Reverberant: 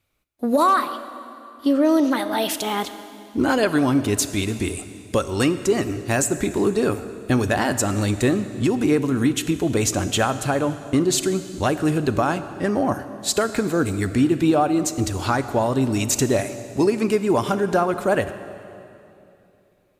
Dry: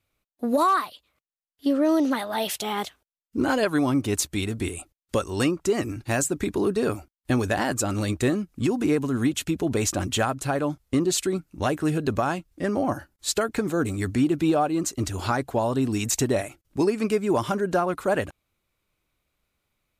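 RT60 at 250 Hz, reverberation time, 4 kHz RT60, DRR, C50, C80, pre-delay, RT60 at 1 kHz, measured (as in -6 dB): 3.2 s, 2.8 s, 2.5 s, 11.5 dB, 12.0 dB, 12.5 dB, 26 ms, 2.7 s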